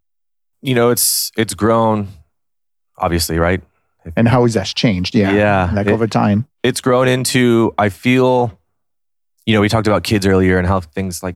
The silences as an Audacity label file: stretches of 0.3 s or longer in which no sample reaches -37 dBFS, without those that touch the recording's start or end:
2.180000	2.980000	silence
3.630000	4.050000	silence
8.530000	9.420000	silence